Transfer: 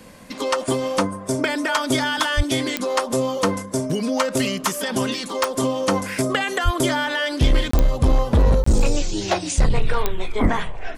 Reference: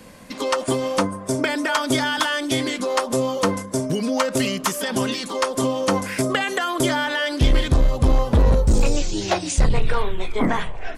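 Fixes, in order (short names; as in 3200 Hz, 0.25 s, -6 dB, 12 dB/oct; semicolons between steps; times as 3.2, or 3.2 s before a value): de-click; 2.36–2.48 HPF 140 Hz 24 dB/oct; 6.64–6.76 HPF 140 Hz 24 dB/oct; 10.42–10.54 HPF 140 Hz 24 dB/oct; interpolate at 7.71/8.64, 24 ms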